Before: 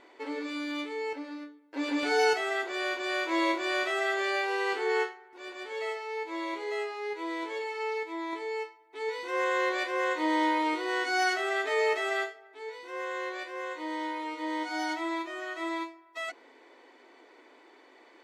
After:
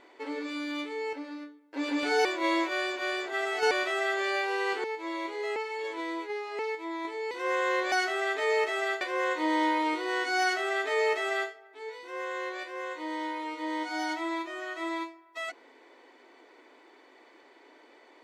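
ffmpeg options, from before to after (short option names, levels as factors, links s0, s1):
-filter_complex "[0:a]asplit=9[s0][s1][s2][s3][s4][s5][s6][s7][s8];[s0]atrim=end=2.252[s9];[s1]atrim=start=2.248:end=3.712,asetpts=PTS-STARTPTS,areverse[s10];[s2]atrim=start=3.708:end=4.842[s11];[s3]atrim=start=6.118:end=6.842[s12];[s4]atrim=start=6.838:end=7.872,asetpts=PTS-STARTPTS,areverse[s13];[s5]atrim=start=7.868:end=8.592[s14];[s6]atrim=start=9.198:end=9.812[s15];[s7]atrim=start=11.208:end=12.302[s16];[s8]atrim=start=9.808[s17];[s9][s10]acrossfade=d=0.004:c1=hsin:c2=hsin[s18];[s18][s11]acrossfade=d=0.004:c1=hsin:c2=hsin[s19];[s19][s12]acrossfade=d=0.004:c1=hsin:c2=hsin[s20];[s20][s13]acrossfade=d=0.004:c1=hsin:c2=hsin[s21];[s21][s14]acrossfade=d=0.004:c1=hsin:c2=hsin[s22];[s22][s15]acrossfade=d=0.004:c1=hsin:c2=hsin[s23];[s23][s16]acrossfade=d=0.004:c1=hsin:c2=hsin[s24];[s24][s17]acrossfade=d=0.004:c1=hsin:c2=hsin"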